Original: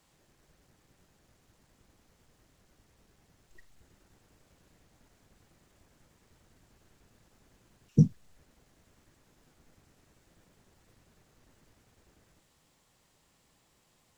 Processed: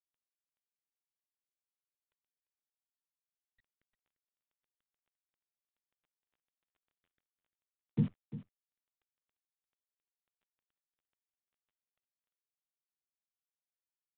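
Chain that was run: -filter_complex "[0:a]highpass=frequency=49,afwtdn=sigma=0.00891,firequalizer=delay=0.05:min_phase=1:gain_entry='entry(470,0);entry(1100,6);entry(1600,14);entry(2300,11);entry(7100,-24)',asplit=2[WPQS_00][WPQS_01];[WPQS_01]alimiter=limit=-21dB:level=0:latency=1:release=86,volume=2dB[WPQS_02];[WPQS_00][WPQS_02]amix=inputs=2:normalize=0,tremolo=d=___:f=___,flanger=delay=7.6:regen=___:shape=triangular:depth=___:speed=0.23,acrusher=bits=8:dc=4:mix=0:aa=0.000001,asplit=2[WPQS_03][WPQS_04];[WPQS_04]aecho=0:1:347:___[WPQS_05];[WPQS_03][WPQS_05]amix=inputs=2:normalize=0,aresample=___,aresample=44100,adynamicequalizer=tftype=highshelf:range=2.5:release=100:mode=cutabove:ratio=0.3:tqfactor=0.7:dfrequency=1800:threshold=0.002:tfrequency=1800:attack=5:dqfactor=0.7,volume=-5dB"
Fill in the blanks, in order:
0.59, 7.1, -34, 5, 0.2, 8000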